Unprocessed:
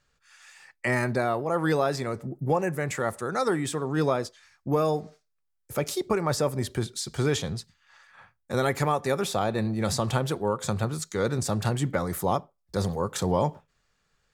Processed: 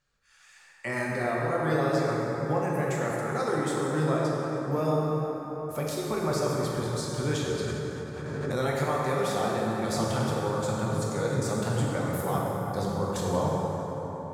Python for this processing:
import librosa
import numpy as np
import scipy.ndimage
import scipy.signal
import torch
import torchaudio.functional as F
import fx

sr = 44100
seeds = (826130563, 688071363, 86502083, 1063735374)

y = fx.rev_plate(x, sr, seeds[0], rt60_s=4.7, hf_ratio=0.45, predelay_ms=0, drr_db=-4.5)
y = fx.pre_swell(y, sr, db_per_s=22.0, at=(7.59, 8.81))
y = F.gain(torch.from_numpy(y), -7.0).numpy()